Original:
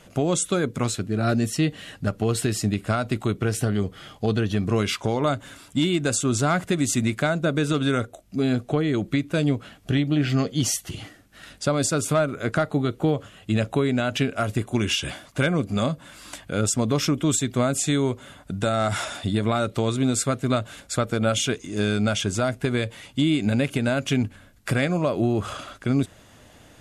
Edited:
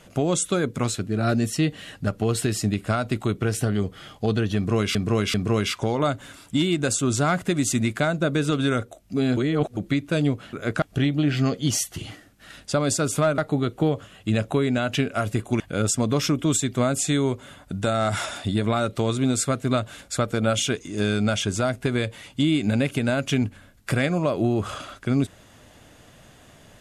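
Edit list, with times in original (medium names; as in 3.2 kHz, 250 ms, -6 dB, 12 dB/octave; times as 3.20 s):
4.56–4.95 s: loop, 3 plays
8.59–8.99 s: reverse
12.31–12.60 s: move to 9.75 s
14.82–16.39 s: delete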